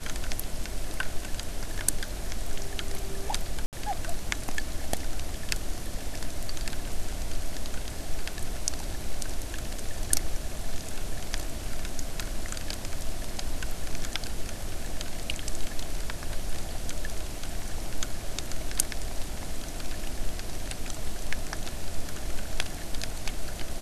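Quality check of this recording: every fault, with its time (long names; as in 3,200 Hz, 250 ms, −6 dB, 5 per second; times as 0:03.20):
0:03.66–0:03.73: drop-out 68 ms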